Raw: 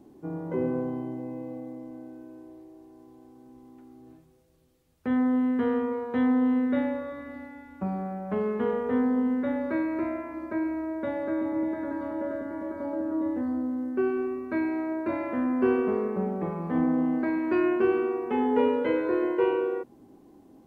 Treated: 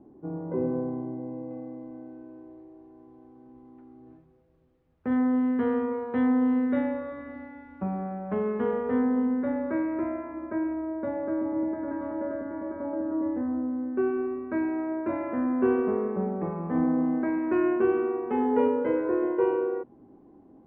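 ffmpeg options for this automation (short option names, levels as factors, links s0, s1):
-af "asetnsamples=n=441:p=0,asendcmd='1.51 lowpass f 1800;5.12 lowpass f 2500;9.25 lowpass f 1700;10.73 lowpass f 1300;11.88 lowpass f 1800;18.67 lowpass f 1400',lowpass=1100"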